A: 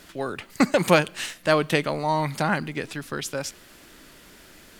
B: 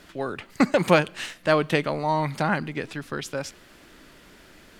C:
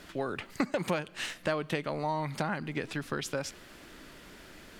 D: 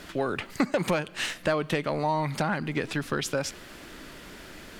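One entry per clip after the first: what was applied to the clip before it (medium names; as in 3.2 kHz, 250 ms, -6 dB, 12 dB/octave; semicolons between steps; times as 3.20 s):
treble shelf 5.8 kHz -9.5 dB
compression 4:1, threshold -29 dBFS, peak gain reduction 15 dB
saturation -19 dBFS, distortion -20 dB; trim +6 dB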